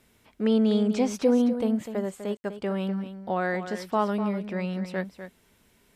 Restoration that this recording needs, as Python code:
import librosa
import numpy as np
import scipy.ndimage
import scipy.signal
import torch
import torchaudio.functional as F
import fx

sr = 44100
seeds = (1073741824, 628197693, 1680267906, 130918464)

y = fx.fix_ambience(x, sr, seeds[0], print_start_s=5.38, print_end_s=5.88, start_s=2.37, end_s=2.44)
y = fx.fix_echo_inverse(y, sr, delay_ms=249, level_db=-10.5)